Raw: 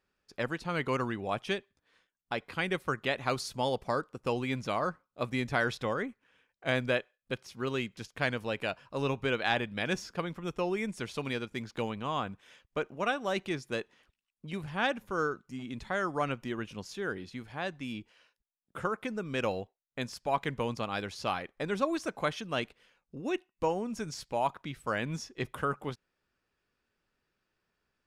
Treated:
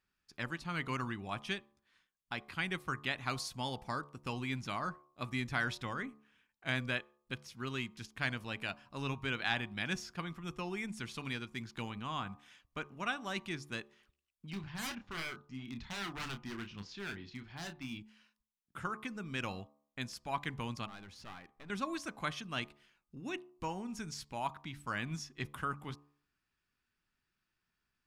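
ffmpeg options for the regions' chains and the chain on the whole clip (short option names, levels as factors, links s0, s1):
-filter_complex "[0:a]asettb=1/sr,asplit=3[s0][s1][s2];[s0]atrim=end=14.504[s3];[s1]atrim=start=14.5:end=17.99,asetpts=PTS-STARTPTS,afade=t=in:d=0.004:c=qsin,afade=t=out:st=3.486:d=0.004:c=qsin,lowpass=f=5200:w=0.5412,lowpass=f=5200:w=1.3066,aeval=exprs='0.0299*(abs(mod(val(0)/0.0299+3,4)-2)-1)':c=same,asplit=2[s4][s5];[s5]adelay=30,volume=0.376[s6];[s4][s6]amix=inputs=2:normalize=0,atrim=end_sample=153909[s7];[s2]atrim=start=17.986[s8];[s3][s7]acrossfade=d=0.004:c1=hsin:c2=qsin[s9];[s9][s8]acrossfade=d=0.004:c1=qsin:c2=hsin,asettb=1/sr,asplit=3[s10][s11][s12];[s10]atrim=end=20.864[s13];[s11]atrim=start=20.86:end=21.7,asetpts=PTS-STARTPTS,afade=t=in:d=0.004:c=qsin,afade=t=out:st=0.836:d=0.004:c=qsin,highshelf=f=2400:g=-9,acompressor=threshold=0.00398:ratio=1.5:attack=3.2:release=140:knee=1:detection=peak,aeval=exprs='clip(val(0),-1,0.00501)':c=same[s14];[s12]atrim=start=21.696[s15];[s13][s14]acrossfade=d=0.004:c1=hsin:c2=qsin[s16];[s16][s15]acrossfade=d=0.004:c1=qsin:c2=hsin,equalizer=f=510:t=o:w=1:g=-13,bandreject=f=72.26:t=h:w=4,bandreject=f=144.52:t=h:w=4,bandreject=f=216.78:t=h:w=4,bandreject=f=289.04:t=h:w=4,bandreject=f=361.3:t=h:w=4,bandreject=f=433.56:t=h:w=4,bandreject=f=505.82:t=h:w=4,bandreject=f=578.08:t=h:w=4,bandreject=f=650.34:t=h:w=4,bandreject=f=722.6:t=h:w=4,bandreject=f=794.86:t=h:w=4,bandreject=f=867.12:t=h:w=4,bandreject=f=939.38:t=h:w=4,bandreject=f=1011.64:t=h:w=4,bandreject=f=1083.9:t=h:w=4,bandreject=f=1156.16:t=h:w=4,bandreject=f=1228.42:t=h:w=4,volume=0.75"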